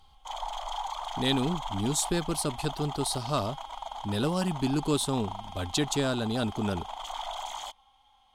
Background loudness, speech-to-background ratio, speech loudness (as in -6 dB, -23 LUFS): -38.5 LUFS, 8.5 dB, -30.0 LUFS